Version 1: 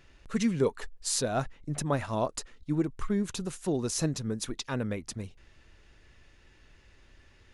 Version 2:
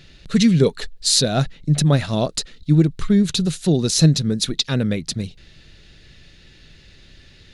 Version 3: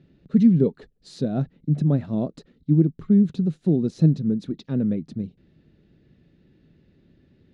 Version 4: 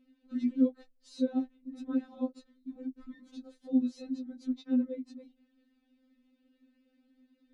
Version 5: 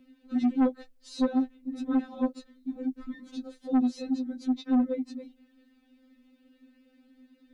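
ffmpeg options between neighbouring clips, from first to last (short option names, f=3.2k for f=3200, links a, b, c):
-af "equalizer=f=160:t=o:w=0.67:g=10,equalizer=f=1k:t=o:w=0.67:g=-9,equalizer=f=4k:t=o:w=0.67:g=12,volume=9dB"
-af "bandpass=f=240:t=q:w=1.3:csg=0"
-af "afftfilt=real='re*3.46*eq(mod(b,12),0)':imag='im*3.46*eq(mod(b,12),0)':win_size=2048:overlap=0.75,volume=-6dB"
-filter_complex "[0:a]acrossover=split=210|2100[a][b][c];[b]crystalizer=i=3.5:c=0[d];[a][d][c]amix=inputs=3:normalize=0,asoftclip=type=tanh:threshold=-26.5dB,volume=8dB"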